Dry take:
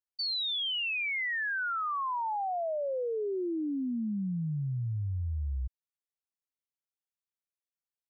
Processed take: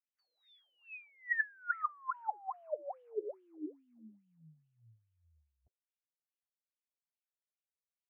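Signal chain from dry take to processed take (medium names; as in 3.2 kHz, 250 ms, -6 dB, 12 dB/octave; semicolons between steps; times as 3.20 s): wah-wah 2.4 Hz 330–2200 Hz, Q 16; resonant high shelf 2.6 kHz -11.5 dB, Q 1.5; formant shift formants +6 st; trim +6 dB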